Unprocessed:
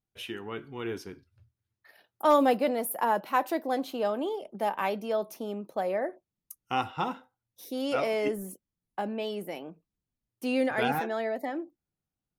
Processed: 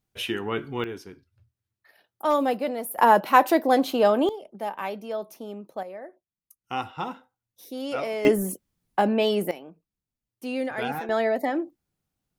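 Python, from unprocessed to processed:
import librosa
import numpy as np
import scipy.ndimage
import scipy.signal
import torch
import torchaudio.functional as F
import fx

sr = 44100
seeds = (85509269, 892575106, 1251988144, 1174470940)

y = fx.gain(x, sr, db=fx.steps((0.0, 9.0), (0.84, -1.0), (2.98, 9.5), (4.29, -2.0), (5.83, -9.5), (6.64, -1.0), (8.25, 11.0), (9.51, -2.0), (11.09, 7.5)))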